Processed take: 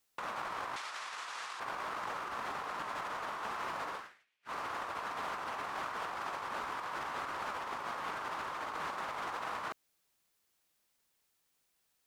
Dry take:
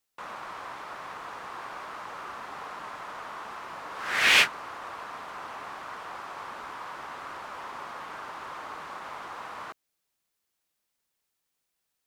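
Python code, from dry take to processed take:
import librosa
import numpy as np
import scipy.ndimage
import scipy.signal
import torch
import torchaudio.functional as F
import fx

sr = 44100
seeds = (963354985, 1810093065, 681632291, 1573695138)

y = fx.weighting(x, sr, curve='ITU-R 468', at=(0.76, 1.6))
y = fx.over_compress(y, sr, threshold_db=-41.0, ratio=-0.5)
y = y * 10.0 ** (-1.5 / 20.0)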